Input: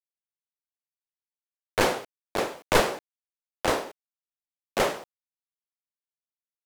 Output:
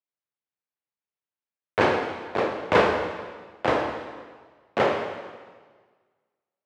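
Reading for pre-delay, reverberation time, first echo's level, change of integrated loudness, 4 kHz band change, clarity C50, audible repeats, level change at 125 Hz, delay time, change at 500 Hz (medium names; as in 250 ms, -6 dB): 13 ms, 1.5 s, no echo, +2.0 dB, -3.0 dB, 5.0 dB, no echo, +2.5 dB, no echo, +4.0 dB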